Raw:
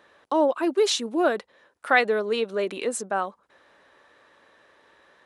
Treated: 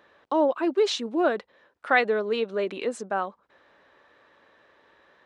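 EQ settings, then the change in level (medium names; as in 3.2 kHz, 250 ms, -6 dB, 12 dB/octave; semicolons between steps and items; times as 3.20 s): tape spacing loss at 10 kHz 26 dB; treble shelf 2.8 kHz +10 dB; 0.0 dB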